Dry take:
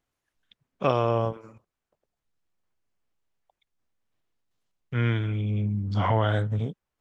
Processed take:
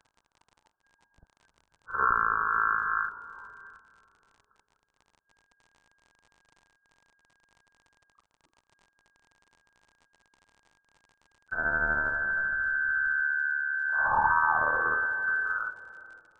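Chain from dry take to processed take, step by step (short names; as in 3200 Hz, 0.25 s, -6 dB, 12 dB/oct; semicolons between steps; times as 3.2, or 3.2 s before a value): gliding pitch shift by +11 st starting unshifted; inverted band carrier 3800 Hz; on a send at -14.5 dB: reverb RT60 1.6 s, pre-delay 0.102 s; on the sum: crackle 130/s -49 dBFS; in parallel at +1.5 dB: level quantiser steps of 18 dB; on the sum: low shelf 200 Hz +7.5 dB; speed mistake 78 rpm record played at 33 rpm; bell 920 Hz +8 dB 0.47 oct; gain -6 dB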